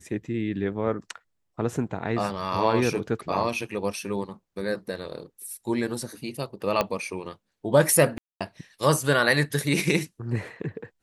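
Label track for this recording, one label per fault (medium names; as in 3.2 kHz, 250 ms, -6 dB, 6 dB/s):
6.810000	6.810000	pop -9 dBFS
8.180000	8.410000	dropout 226 ms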